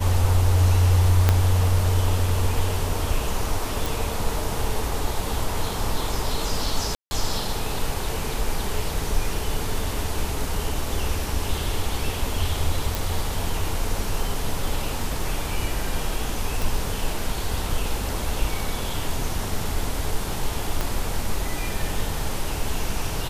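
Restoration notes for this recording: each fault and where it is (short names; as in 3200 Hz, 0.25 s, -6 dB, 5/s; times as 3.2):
1.29 pop -4 dBFS
3.86 pop
6.95–7.11 gap 0.16 s
12.95 pop
16.62 pop
20.81 pop -10 dBFS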